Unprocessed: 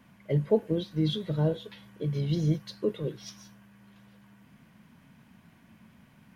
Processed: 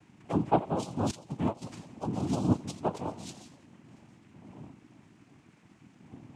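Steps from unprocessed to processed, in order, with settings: wind noise 140 Hz -45 dBFS; two-band feedback delay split 390 Hz, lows 167 ms, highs 84 ms, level -15 dB; noise-vocoded speech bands 4; 1.11–1.62 s: upward expansion 2.5:1, over -31 dBFS; trim -2 dB

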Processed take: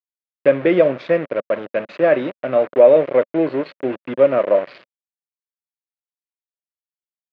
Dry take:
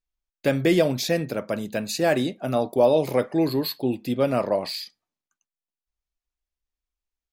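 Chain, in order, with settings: Chebyshev shaper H 6 -27 dB, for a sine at -7.5 dBFS; small samples zeroed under -28.5 dBFS; cabinet simulation 210–2500 Hz, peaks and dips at 230 Hz -6 dB, 560 Hz +8 dB, 830 Hz -7 dB; trim +4 dB

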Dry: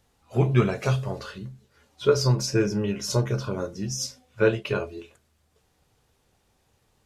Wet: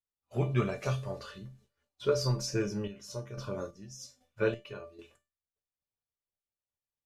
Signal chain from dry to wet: expander -49 dBFS; 2.54–4.99 s: square tremolo 1.2 Hz, depth 65%, duty 40%; feedback comb 590 Hz, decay 0.27 s, harmonics all, mix 80%; trim +4.5 dB

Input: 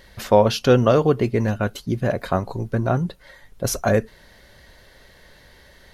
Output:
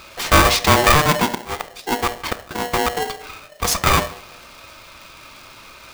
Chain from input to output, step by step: overdrive pedal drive 11 dB, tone 5.9 kHz, clips at -1.5 dBFS; 1.29–2.97 s: inverted gate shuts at -11 dBFS, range -35 dB; one-sided clip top -21 dBFS; on a send at -11 dB: reverberation RT60 0.50 s, pre-delay 3 ms; on the sum: polarity switched at an audio rate 600 Hz; trim +4 dB

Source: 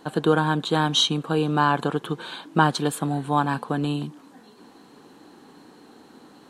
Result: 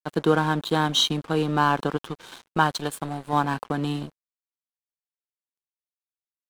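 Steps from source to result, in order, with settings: 1.96–3.33 s: dynamic bell 250 Hz, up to -6 dB, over -33 dBFS, Q 0.78; crossover distortion -37 dBFS

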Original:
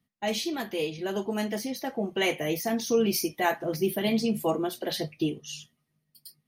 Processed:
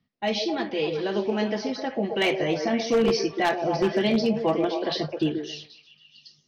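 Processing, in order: steep low-pass 5.7 kHz 72 dB/octave; repeats whose band climbs or falls 130 ms, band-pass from 460 Hz, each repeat 0.7 oct, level -3 dB; wavefolder -17.5 dBFS; trim +3 dB

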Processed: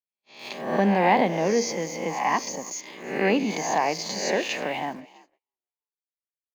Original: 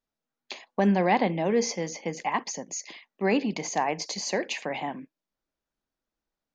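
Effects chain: reverse spectral sustain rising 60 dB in 0.76 s; in parallel at -10 dB: small samples zeroed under -34.5 dBFS; on the sum: bass shelf 150 Hz -5 dB; on a send: frequency-shifting echo 326 ms, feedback 42%, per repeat +54 Hz, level -23 dB; on the sum: gate -51 dBFS, range -38 dB; peaking EQ 7.4 kHz -3.5 dB 2.3 oct; trim -1 dB

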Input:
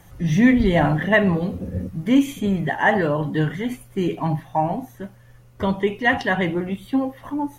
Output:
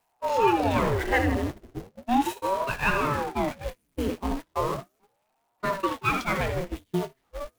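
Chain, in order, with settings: jump at every zero crossing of -22.5 dBFS; on a send: thinning echo 81 ms, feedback 52%, high-pass 210 Hz, level -9 dB; on the sum: gate -20 dBFS, range -37 dB; ring modulator with a swept carrier 460 Hz, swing 80%, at 0.36 Hz; trim -5.5 dB

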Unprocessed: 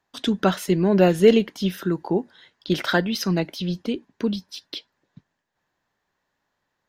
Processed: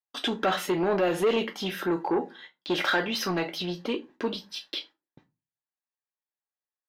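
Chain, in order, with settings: gate -49 dBFS, range -32 dB; on a send at -4.5 dB: tilt EQ +2.5 dB/octave + reverberation RT60 0.25 s, pre-delay 3 ms; on the sum: peak limiter -12 dBFS, peak gain reduction 9 dB; saturation -19 dBFS, distortion -13 dB; tone controls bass -15 dB, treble -11 dB; trim +3.5 dB

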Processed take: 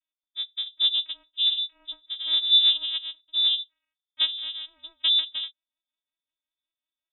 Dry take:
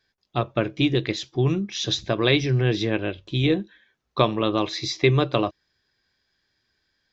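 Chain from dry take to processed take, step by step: 1.56–4.37 s: comb 6.2 ms, depth 49%; vocoder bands 4, square 162 Hz; rotary cabinet horn 0.6 Hz, later 5.5 Hz, at 3.57 s; frequency inversion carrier 3.7 kHz; upward expansion 1.5:1, over -38 dBFS

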